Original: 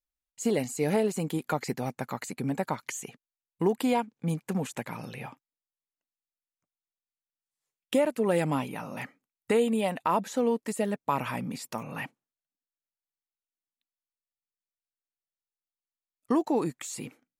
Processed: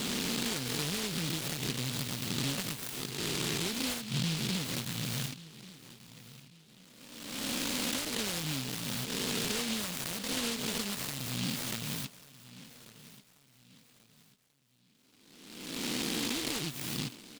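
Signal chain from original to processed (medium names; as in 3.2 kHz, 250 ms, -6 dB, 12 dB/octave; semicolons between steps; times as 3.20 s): reverse spectral sustain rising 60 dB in 1.33 s; compression 12:1, threshold -38 dBFS, peak gain reduction 20.5 dB; graphic EQ 125/250/500/4000 Hz +11/+5/+5/+9 dB; on a send: feedback delay 1138 ms, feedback 37%, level -17.5 dB; on the sum: delay time shaken by noise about 3.4 kHz, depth 0.47 ms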